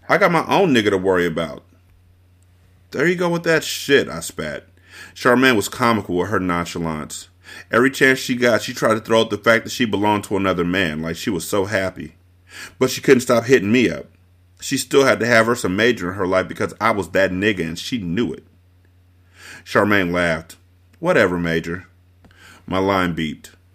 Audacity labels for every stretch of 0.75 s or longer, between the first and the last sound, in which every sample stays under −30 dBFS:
1.580000	2.930000	silence
18.380000	19.450000	silence
21.800000	22.680000	silence